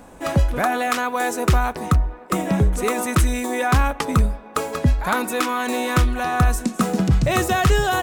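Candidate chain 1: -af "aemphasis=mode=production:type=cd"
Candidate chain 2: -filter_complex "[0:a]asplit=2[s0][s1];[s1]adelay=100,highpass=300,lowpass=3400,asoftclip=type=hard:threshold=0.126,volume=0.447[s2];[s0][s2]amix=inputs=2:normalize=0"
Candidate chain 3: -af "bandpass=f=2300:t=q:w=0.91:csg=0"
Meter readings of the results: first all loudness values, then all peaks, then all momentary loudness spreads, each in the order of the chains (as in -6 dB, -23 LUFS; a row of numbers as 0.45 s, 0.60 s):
-20.0 LUFS, -20.5 LUFS, -29.0 LUFS; -4.5 dBFS, -7.0 dBFS, -11.0 dBFS; 4 LU, 4 LU, 9 LU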